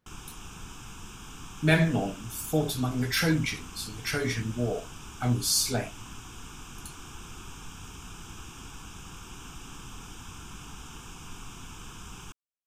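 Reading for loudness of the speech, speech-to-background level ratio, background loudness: -28.0 LUFS, 16.5 dB, -44.5 LUFS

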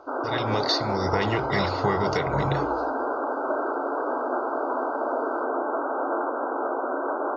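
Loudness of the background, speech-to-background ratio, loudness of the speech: -27.5 LUFS, -0.5 dB, -28.0 LUFS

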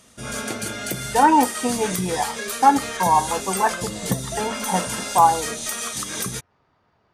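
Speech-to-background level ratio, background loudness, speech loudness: 6.0 dB, -27.0 LUFS, -21.0 LUFS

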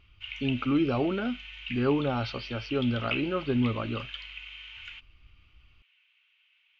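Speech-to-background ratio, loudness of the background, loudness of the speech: 10.0 dB, -39.5 LUFS, -29.5 LUFS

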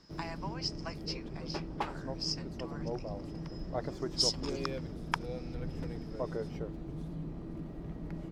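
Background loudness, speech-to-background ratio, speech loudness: -40.5 LUFS, 3.5 dB, -37.0 LUFS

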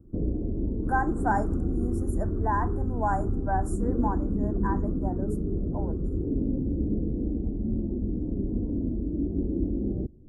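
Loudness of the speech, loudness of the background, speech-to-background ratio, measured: -33.0 LUFS, -30.0 LUFS, -3.0 dB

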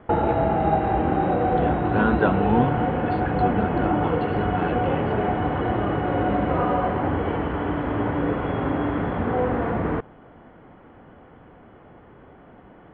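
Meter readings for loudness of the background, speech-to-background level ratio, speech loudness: -23.5 LUFS, -4.0 dB, -27.5 LUFS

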